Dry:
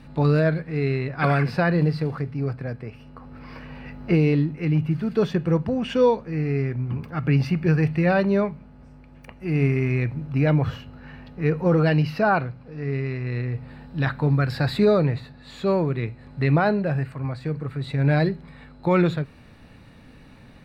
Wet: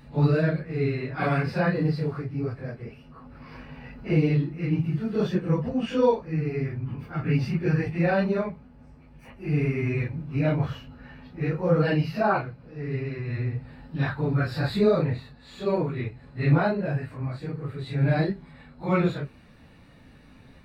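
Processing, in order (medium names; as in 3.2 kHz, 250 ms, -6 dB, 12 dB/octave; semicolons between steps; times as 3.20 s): phase randomisation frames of 100 ms; trim -3.5 dB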